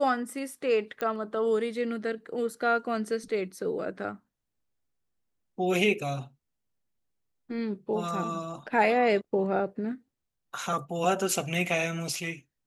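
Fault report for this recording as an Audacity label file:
1.010000	1.010000	pop -18 dBFS

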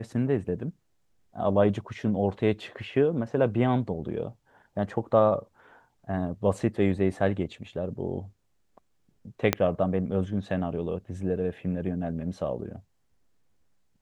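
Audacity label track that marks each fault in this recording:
9.530000	9.530000	pop -6 dBFS

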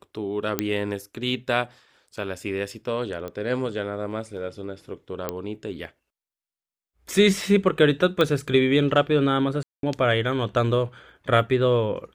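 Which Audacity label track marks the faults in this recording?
0.590000	0.590000	pop -7 dBFS
3.280000	3.280000	pop -21 dBFS
5.290000	5.290000	pop -12 dBFS
8.210000	8.210000	pop -10 dBFS
9.630000	9.830000	gap 0.202 s

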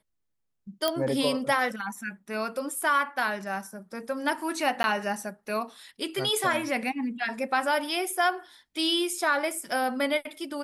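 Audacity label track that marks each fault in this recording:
0.880000	0.880000	pop -11 dBFS
4.830000	4.840000	gap 10 ms

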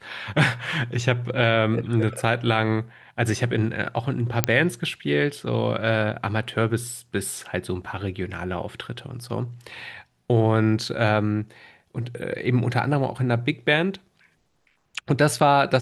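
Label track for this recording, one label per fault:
4.440000	4.440000	pop -1 dBFS

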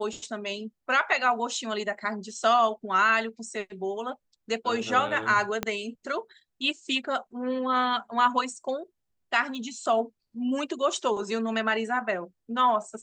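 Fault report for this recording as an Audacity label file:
5.630000	5.630000	pop -12 dBFS
9.550000	9.550000	pop -26 dBFS

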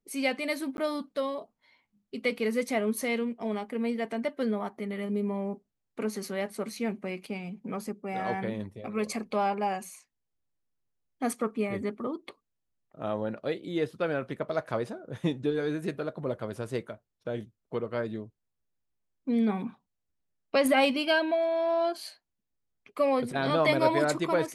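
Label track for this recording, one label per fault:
0.770000	0.780000	gap

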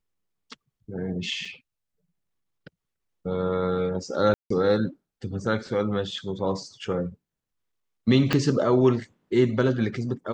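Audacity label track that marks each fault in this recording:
1.450000	1.450000	gap 3.3 ms
4.340000	4.500000	gap 0.164 s
8.330000	8.330000	pop -9 dBFS

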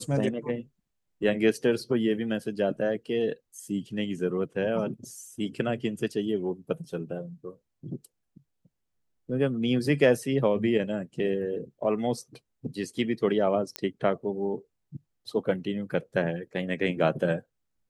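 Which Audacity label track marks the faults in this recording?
13.760000	13.760000	pop -13 dBFS

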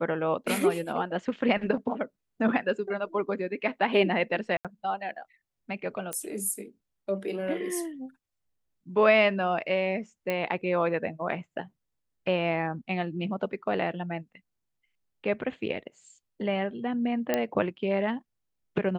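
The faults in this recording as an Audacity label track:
4.570000	4.650000	gap 77 ms
6.130000	6.130000	pop -16 dBFS
10.300000	10.300000	pop -16 dBFS
17.340000	17.340000	pop -11 dBFS

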